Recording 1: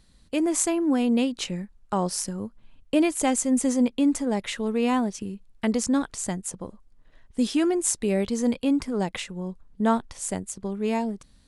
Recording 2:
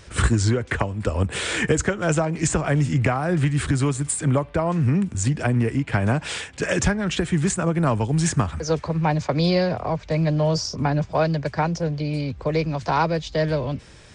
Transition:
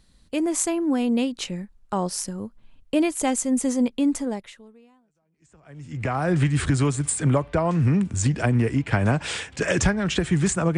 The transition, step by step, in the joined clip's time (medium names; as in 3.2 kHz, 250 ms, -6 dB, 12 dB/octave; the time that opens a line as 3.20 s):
recording 1
5.22 s: go over to recording 2 from 2.23 s, crossfade 1.92 s exponential